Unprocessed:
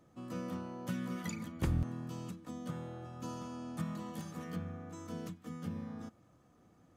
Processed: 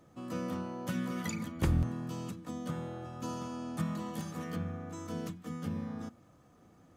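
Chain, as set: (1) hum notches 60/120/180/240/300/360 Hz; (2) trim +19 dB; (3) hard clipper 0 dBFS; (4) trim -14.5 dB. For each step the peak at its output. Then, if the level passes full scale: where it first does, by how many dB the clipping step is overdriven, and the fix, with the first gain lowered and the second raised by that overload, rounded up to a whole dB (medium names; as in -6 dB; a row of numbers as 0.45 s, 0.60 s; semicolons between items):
-22.0 dBFS, -3.0 dBFS, -3.0 dBFS, -17.5 dBFS; nothing clips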